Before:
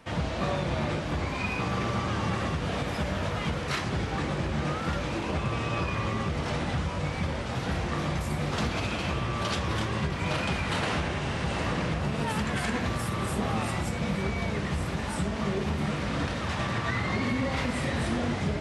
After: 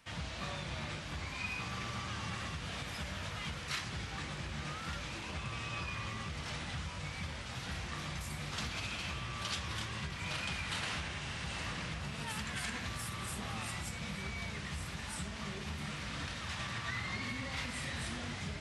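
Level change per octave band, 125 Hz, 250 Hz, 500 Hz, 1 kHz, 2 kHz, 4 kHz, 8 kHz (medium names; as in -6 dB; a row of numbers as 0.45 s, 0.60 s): -12.0 dB, -14.5 dB, -17.0 dB, -11.5 dB, -7.0 dB, -4.5 dB, -3.0 dB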